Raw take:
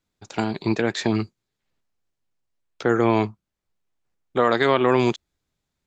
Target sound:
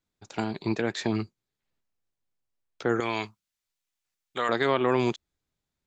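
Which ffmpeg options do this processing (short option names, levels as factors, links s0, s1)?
-filter_complex "[0:a]asettb=1/sr,asplit=3[s0][s1][s2];[s0]atrim=end=3.004[s3];[s1]atrim=start=3:end=4.49,asetpts=PTS-STARTPTS,afade=t=in:d=0.004:c=qsin,afade=t=out:st=1.486:d=0.004:c=qsin,tiltshelf=f=1300:g=-10[s4];[s2]atrim=start=4.486[s5];[s3][s4]acrossfade=d=0.004:c1=hsin:c2=qsin[s6];[s6][s5]acrossfade=d=0.004:c1=qsin:c2=hsin,volume=0.531"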